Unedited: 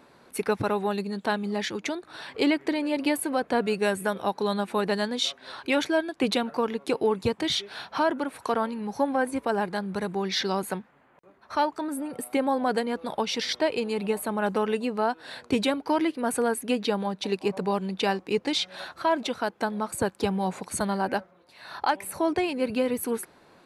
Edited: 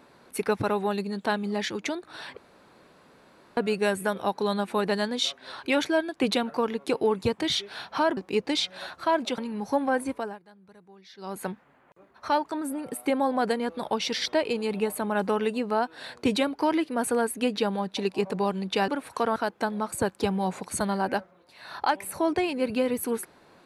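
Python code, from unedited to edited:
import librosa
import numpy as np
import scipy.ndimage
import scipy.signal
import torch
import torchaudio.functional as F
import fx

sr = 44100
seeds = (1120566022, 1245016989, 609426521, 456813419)

y = fx.edit(x, sr, fx.room_tone_fill(start_s=2.37, length_s=1.2),
    fx.swap(start_s=8.17, length_s=0.48, other_s=18.15, other_length_s=1.21),
    fx.fade_down_up(start_s=9.31, length_s=1.48, db=-23.5, fade_s=0.35), tone=tone)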